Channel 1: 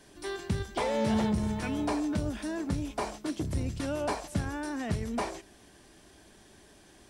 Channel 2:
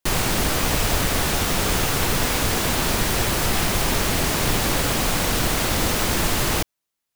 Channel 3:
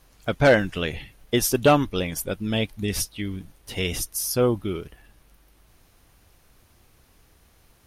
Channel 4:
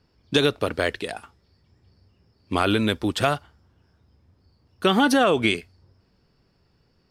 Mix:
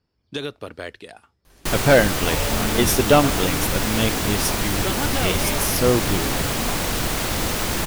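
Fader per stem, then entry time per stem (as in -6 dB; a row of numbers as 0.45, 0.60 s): -1.0, -2.0, +2.0, -9.5 dB; 1.50, 1.60, 1.45, 0.00 s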